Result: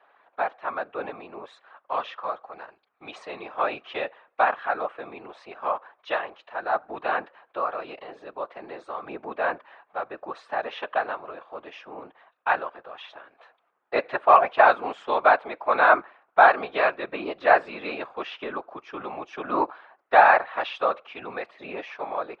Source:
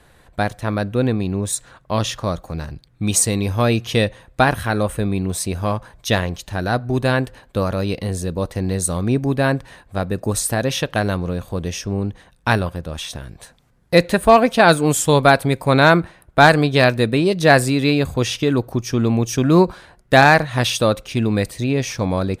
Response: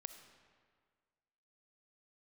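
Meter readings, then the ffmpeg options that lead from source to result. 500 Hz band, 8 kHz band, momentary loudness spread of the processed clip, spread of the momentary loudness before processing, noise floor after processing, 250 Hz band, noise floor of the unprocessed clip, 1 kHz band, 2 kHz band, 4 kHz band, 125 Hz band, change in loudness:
-8.0 dB, under -40 dB, 23 LU, 12 LU, -70 dBFS, -21.0 dB, -54 dBFS, -2.0 dB, -5.5 dB, -16.5 dB, under -35 dB, -6.0 dB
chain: -af "highpass=f=440:w=0.5412,highpass=f=440:w=1.3066,equalizer=f=470:t=q:w=4:g=-7,equalizer=f=780:t=q:w=4:g=5,equalizer=f=1.2k:t=q:w=4:g=7,equalizer=f=2k:t=q:w=4:g=-3,lowpass=f=2.7k:w=0.5412,lowpass=f=2.7k:w=1.3066,afftfilt=real='hypot(re,im)*cos(2*PI*random(0))':imag='hypot(re,im)*sin(2*PI*random(1))':win_size=512:overlap=0.75"

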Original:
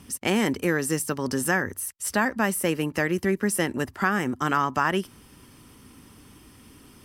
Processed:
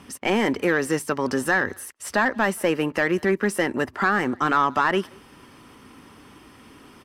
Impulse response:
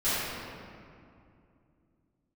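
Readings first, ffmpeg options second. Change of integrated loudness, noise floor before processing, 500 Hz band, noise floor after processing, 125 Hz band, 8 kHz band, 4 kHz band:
+2.5 dB, -52 dBFS, +4.0 dB, -50 dBFS, -2.0 dB, -5.5 dB, +1.0 dB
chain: -filter_complex "[0:a]asplit=2[a][b];[b]highpass=f=720:p=1,volume=15dB,asoftclip=type=tanh:threshold=-8dB[c];[a][c]amix=inputs=2:normalize=0,lowpass=f=1.4k:p=1,volume=-6dB,asplit=2[d][e];[e]adelay=180,highpass=300,lowpass=3.4k,asoftclip=type=hard:threshold=-18dB,volume=-26dB[f];[d][f]amix=inputs=2:normalize=0,volume=1dB"

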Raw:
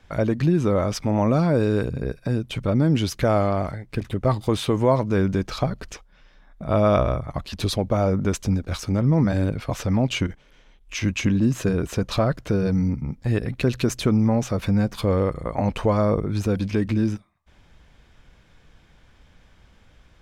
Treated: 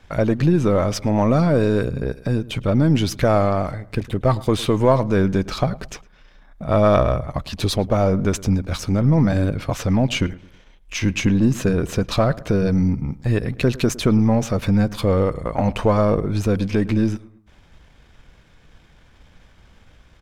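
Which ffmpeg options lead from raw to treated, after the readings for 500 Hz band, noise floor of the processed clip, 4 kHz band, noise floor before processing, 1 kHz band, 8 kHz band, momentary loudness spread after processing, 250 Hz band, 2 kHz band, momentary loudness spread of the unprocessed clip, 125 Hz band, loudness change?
+3.5 dB, -52 dBFS, +3.0 dB, -55 dBFS, +3.5 dB, +3.0 dB, 8 LU, +3.0 dB, +3.5 dB, 8 LU, +3.0 dB, +3.0 dB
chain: -filter_complex "[0:a]aeval=exprs='if(lt(val(0),0),0.708*val(0),val(0))':c=same,asplit=2[a][b];[b]adelay=108,lowpass=f=1.7k:p=1,volume=-19dB,asplit=2[c][d];[d]adelay=108,lowpass=f=1.7k:p=1,volume=0.4,asplit=2[e][f];[f]adelay=108,lowpass=f=1.7k:p=1,volume=0.4[g];[a][c][e][g]amix=inputs=4:normalize=0,volume=4.5dB"

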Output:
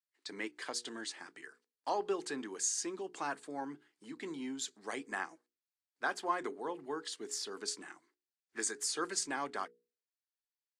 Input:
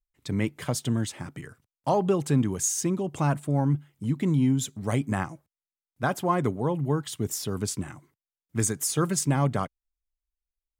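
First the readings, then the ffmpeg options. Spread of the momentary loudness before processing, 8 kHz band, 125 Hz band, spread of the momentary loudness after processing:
11 LU, -7.5 dB, -36.5 dB, 13 LU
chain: -af "highpass=f=340:w=0.5412,highpass=f=340:w=1.3066,equalizer=f=580:t=q:w=4:g=-8,equalizer=f=1.7k:t=q:w=4:g=7,equalizer=f=4.5k:t=q:w=4:g=9,lowpass=f=9.1k:w=0.5412,lowpass=f=9.1k:w=1.3066,bandreject=f=60:t=h:w=6,bandreject=f=120:t=h:w=6,bandreject=f=180:t=h:w=6,bandreject=f=240:t=h:w=6,bandreject=f=300:t=h:w=6,bandreject=f=360:t=h:w=6,bandreject=f=420:t=h:w=6,bandreject=f=480:t=h:w=6,volume=-7.5dB" -ar 32000 -c:a libvorbis -b:a 64k

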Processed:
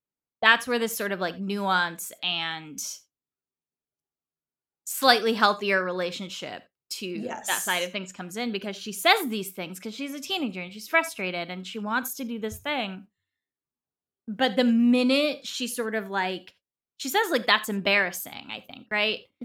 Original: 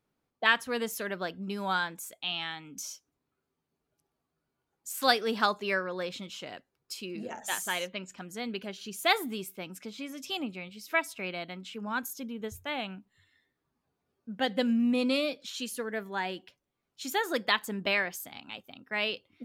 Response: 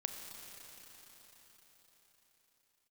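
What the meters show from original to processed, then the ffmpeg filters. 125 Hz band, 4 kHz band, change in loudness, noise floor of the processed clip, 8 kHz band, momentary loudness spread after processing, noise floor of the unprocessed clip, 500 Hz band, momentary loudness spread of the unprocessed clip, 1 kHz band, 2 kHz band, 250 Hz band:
+6.0 dB, +6.0 dB, +6.0 dB, under -85 dBFS, +6.0 dB, 15 LU, -84 dBFS, +6.0 dB, 15 LU, +6.0 dB, +6.0 dB, +6.0 dB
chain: -filter_complex "[0:a]agate=range=-23dB:threshold=-51dB:ratio=16:detection=peak,asplit=2[a][b];[1:a]atrim=start_sample=2205,afade=t=out:st=0.14:d=0.01,atrim=end_sample=6615[c];[b][c]afir=irnorm=-1:irlink=0,volume=1.5dB[d];[a][d]amix=inputs=2:normalize=0"

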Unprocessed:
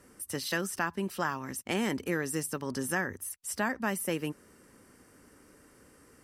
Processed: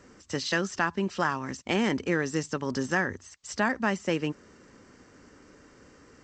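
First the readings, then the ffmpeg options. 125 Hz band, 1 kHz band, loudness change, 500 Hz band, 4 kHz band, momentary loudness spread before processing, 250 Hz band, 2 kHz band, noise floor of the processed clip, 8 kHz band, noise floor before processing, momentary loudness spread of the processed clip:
+4.5 dB, +4.5 dB, +4.0 dB, +4.5 dB, +4.5 dB, 6 LU, +4.5 dB, +4.5 dB, -56 dBFS, -3.5 dB, -60 dBFS, 8 LU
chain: -af "volume=4.5dB" -ar 16000 -c:a g722

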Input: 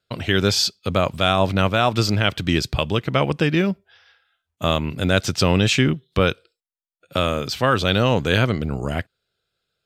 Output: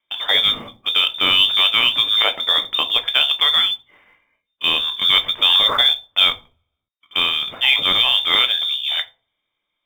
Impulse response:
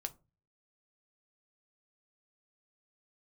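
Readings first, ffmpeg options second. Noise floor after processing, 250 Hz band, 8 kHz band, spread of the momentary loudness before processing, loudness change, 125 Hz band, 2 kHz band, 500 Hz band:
-78 dBFS, -17.5 dB, under -10 dB, 7 LU, +5.5 dB, under -20 dB, +3.5 dB, -12.0 dB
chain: -filter_complex "[0:a]lowpass=f=3.1k:t=q:w=0.5098,lowpass=f=3.1k:t=q:w=0.6013,lowpass=f=3.1k:t=q:w=0.9,lowpass=f=3.1k:t=q:w=2.563,afreqshift=-3700[a];[1:a]atrim=start_sample=2205,asetrate=32193,aresample=44100[b];[a][b]afir=irnorm=-1:irlink=0,acrusher=bits=7:mode=log:mix=0:aa=0.000001,volume=2.5dB"

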